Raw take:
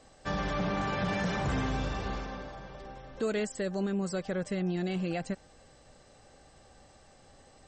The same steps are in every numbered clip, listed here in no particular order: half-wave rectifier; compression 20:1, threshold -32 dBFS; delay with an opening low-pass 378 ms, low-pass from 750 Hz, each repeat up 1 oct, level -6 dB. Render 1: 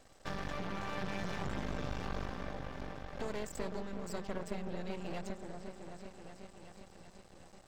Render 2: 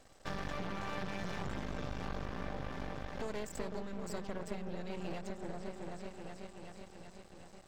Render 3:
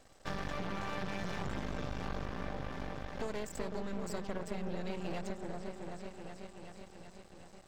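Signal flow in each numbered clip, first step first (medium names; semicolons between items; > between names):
compression > delay with an opening low-pass > half-wave rectifier; delay with an opening low-pass > compression > half-wave rectifier; delay with an opening low-pass > half-wave rectifier > compression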